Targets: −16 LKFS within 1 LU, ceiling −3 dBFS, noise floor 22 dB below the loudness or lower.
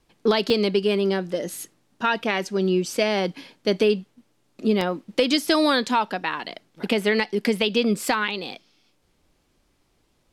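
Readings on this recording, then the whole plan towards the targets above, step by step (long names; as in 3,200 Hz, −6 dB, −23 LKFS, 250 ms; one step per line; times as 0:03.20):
number of dropouts 2; longest dropout 2.7 ms; integrated loudness −23.0 LKFS; sample peak −8.0 dBFS; target loudness −16.0 LKFS
→ repair the gap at 0:00.50/0:04.81, 2.7 ms
level +7 dB
brickwall limiter −3 dBFS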